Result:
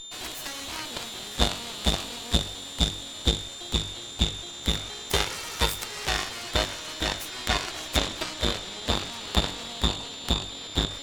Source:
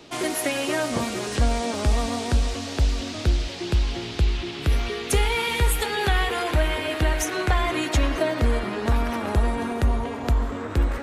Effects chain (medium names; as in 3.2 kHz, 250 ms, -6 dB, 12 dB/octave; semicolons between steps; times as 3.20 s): whistle 3.6 kHz -26 dBFS; Chebyshev shaper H 3 -7 dB, 5 -28 dB, 8 -28 dB, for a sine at -9 dBFS; trim +3.5 dB